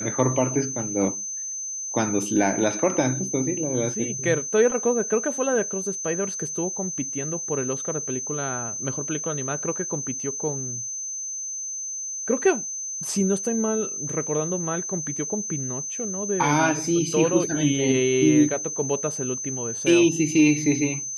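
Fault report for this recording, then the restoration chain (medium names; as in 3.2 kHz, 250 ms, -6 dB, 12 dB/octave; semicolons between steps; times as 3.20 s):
whine 6.2 kHz -29 dBFS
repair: band-stop 6.2 kHz, Q 30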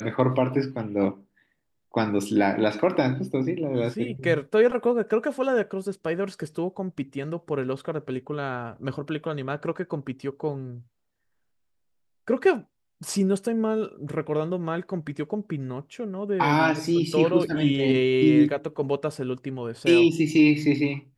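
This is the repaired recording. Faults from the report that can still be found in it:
nothing left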